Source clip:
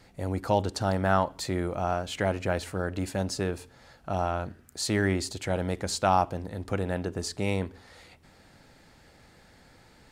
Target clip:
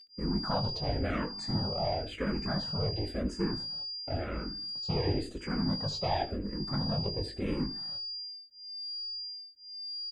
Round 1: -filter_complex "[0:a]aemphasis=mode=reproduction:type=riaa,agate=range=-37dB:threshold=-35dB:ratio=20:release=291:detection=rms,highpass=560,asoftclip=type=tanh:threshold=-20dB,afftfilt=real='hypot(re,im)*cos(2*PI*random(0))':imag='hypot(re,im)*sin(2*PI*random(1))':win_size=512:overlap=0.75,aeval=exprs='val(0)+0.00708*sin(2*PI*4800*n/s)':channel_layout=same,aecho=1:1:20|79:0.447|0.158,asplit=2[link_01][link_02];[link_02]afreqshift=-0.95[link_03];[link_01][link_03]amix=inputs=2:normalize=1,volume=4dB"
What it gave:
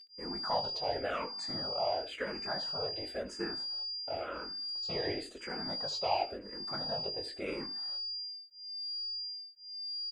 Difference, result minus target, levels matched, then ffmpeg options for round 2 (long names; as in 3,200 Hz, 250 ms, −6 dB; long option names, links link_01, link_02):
125 Hz band −14.5 dB
-filter_complex "[0:a]aemphasis=mode=reproduction:type=riaa,agate=range=-37dB:threshold=-35dB:ratio=20:release=291:detection=rms,highpass=150,asoftclip=type=tanh:threshold=-20dB,afftfilt=real='hypot(re,im)*cos(2*PI*random(0))':imag='hypot(re,im)*sin(2*PI*random(1))':win_size=512:overlap=0.75,aeval=exprs='val(0)+0.00708*sin(2*PI*4800*n/s)':channel_layout=same,aecho=1:1:20|79:0.447|0.158,asplit=2[link_01][link_02];[link_02]afreqshift=-0.95[link_03];[link_01][link_03]amix=inputs=2:normalize=1,volume=4dB"